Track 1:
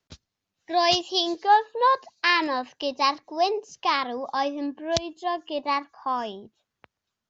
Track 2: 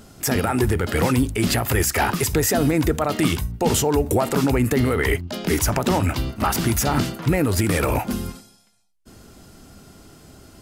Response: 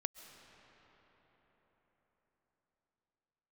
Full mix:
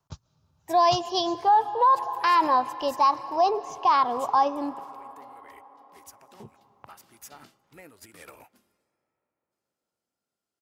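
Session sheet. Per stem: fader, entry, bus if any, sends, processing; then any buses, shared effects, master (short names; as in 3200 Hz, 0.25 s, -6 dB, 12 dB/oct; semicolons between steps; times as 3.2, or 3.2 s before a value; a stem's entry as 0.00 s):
-1.0 dB, 0.00 s, muted 4.8–6.4, send -6 dB, ten-band EQ 125 Hz +11 dB, 250 Hz -6 dB, 500 Hz -3 dB, 1000 Hz +11 dB, 2000 Hz -10 dB, 4000 Hz -6 dB
-16.0 dB, 0.45 s, send -16.5 dB, HPF 660 Hz 6 dB/oct; upward expander 2.5:1, over -35 dBFS; auto duck -10 dB, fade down 1.85 s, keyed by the first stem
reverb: on, RT60 4.9 s, pre-delay 95 ms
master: limiter -12.5 dBFS, peak gain reduction 10.5 dB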